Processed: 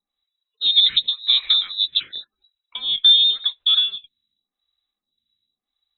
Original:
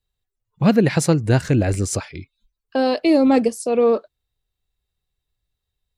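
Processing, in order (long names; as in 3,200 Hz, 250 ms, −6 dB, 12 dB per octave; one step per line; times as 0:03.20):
de-essing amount 95%
parametric band 370 Hz +11.5 dB 0.94 octaves
downward compressor 2.5 to 1, threshold −12 dBFS, peak gain reduction 6 dB
voice inversion scrambler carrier 3,900 Hz
phaser with staggered stages 0.9 Hz
level +1 dB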